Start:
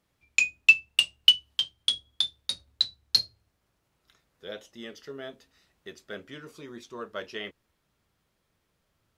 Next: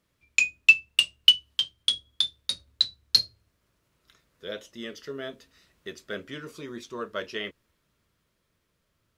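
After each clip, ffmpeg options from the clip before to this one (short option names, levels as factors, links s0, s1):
-af "equalizer=f=790:t=o:w=0.22:g=-10.5,dynaudnorm=f=460:g=9:m=1.58,volume=1.12"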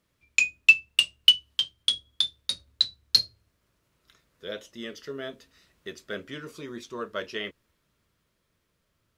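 -af "asoftclip=type=hard:threshold=0.596"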